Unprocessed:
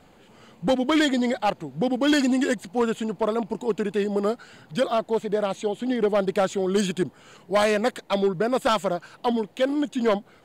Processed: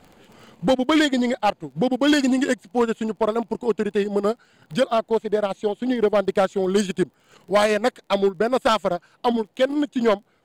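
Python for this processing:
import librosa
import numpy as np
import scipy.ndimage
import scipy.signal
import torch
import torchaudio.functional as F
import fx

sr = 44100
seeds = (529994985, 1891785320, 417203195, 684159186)

y = fx.dmg_crackle(x, sr, seeds[0], per_s=23.0, level_db=-39.0)
y = fx.transient(y, sr, attack_db=1, sustain_db=-12)
y = F.gain(torch.from_numpy(y), 2.5).numpy()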